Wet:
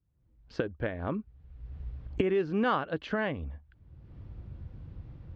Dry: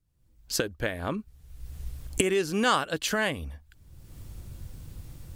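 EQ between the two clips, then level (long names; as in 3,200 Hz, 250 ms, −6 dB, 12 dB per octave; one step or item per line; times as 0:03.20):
high-pass filter 42 Hz
high-frequency loss of the air 190 metres
head-to-tape spacing loss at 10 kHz 28 dB
0.0 dB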